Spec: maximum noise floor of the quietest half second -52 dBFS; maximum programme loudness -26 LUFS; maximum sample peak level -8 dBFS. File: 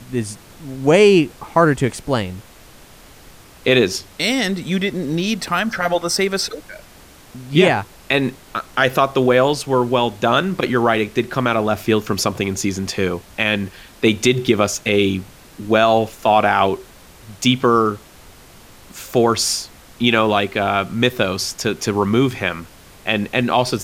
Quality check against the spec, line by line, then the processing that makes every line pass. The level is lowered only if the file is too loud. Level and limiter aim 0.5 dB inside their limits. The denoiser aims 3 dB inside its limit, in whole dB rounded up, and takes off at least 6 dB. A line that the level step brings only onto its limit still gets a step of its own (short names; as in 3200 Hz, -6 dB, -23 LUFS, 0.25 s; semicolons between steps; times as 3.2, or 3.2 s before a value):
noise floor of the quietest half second -44 dBFS: fail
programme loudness -18.0 LUFS: fail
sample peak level -2.0 dBFS: fail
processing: gain -8.5 dB